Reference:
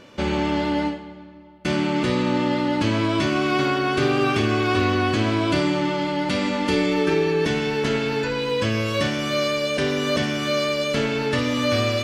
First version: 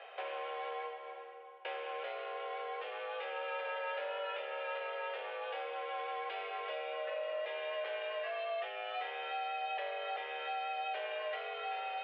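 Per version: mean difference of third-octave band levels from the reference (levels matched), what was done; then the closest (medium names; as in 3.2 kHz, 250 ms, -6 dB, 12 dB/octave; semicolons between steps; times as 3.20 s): 17.0 dB: peaking EQ 1 kHz -2.5 dB; compression, threshold -32 dBFS, peak gain reduction 14.5 dB; saturation -27 dBFS, distortion -20 dB; mistuned SSB +180 Hz 350–2900 Hz; trim -1.5 dB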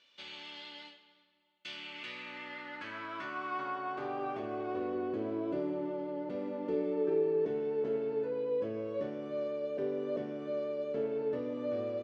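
11.0 dB: bass shelf 440 Hz +4 dB; hum notches 50/100 Hz; band-pass sweep 3.5 kHz -> 460 Hz, 1.56–5.05 s; on a send: delay 332 ms -22 dB; on the sum: trim -9 dB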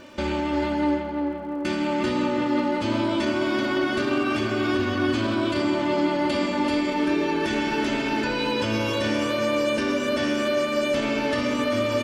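3.5 dB: comb 3.3 ms, depth 65%; peak limiter -17.5 dBFS, peak gain reduction 11.5 dB; crackle 110 per s -48 dBFS; on a send: tape echo 343 ms, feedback 88%, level -4 dB, low-pass 1.7 kHz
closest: third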